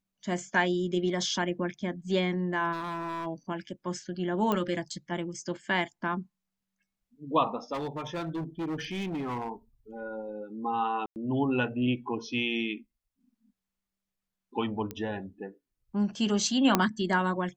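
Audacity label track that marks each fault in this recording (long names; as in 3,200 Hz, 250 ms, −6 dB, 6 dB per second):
2.720000	3.270000	clipping −31.5 dBFS
4.520000	4.520000	click −15 dBFS
7.730000	9.500000	clipping −30 dBFS
11.060000	11.160000	drop-out 99 ms
14.910000	14.910000	click −21 dBFS
16.750000	16.750000	click −7 dBFS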